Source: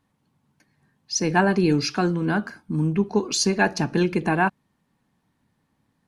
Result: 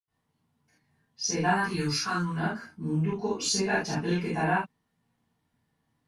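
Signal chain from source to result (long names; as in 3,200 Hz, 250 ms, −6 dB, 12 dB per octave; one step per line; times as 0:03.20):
0:01.41–0:02.29: drawn EQ curve 140 Hz 0 dB, 610 Hz −11 dB, 1,100 Hz +9 dB, 2,600 Hz −1 dB, 4,000 Hz +2 dB, 6,000 Hz +3 dB, 9,600 Hz +9 dB
convolution reverb, pre-delay 76 ms, DRR −60 dB
level +2 dB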